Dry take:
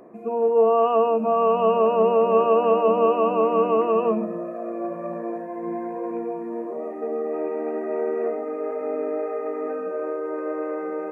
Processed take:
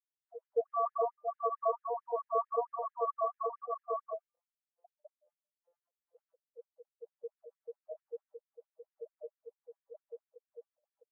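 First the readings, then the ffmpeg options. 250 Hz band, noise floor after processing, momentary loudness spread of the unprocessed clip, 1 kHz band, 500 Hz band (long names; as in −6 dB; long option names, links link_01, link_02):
below −40 dB, below −85 dBFS, 12 LU, −13.0 dB, −18.5 dB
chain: -af "afftfilt=real='re*gte(hypot(re,im),0.355)':imag='im*gte(hypot(re,im),0.355)':win_size=1024:overlap=0.75,bandreject=frequency=298.5:width_type=h:width=4,bandreject=frequency=597:width_type=h:width=4,bandreject=frequency=895.5:width_type=h:width=4,bandreject=frequency=1194:width_type=h:width=4,bandreject=frequency=1492.5:width_type=h:width=4,bandreject=frequency=1791:width_type=h:width=4,bandreject=frequency=2089.5:width_type=h:width=4,bandreject=frequency=2388:width_type=h:width=4,bandreject=frequency=2686.5:width_type=h:width=4,bandreject=frequency=2985:width_type=h:width=4,bandreject=frequency=3283.5:width_type=h:width=4,bandreject=frequency=3582:width_type=h:width=4,bandreject=frequency=3880.5:width_type=h:width=4,flanger=delay=19.5:depth=5.1:speed=0.36,afftfilt=real='re*gte(b*sr/1024,450*pow(1700/450,0.5+0.5*sin(2*PI*4.5*pts/sr)))':imag='im*gte(b*sr/1024,450*pow(1700/450,0.5+0.5*sin(2*PI*4.5*pts/sr)))':win_size=1024:overlap=0.75,volume=-5dB"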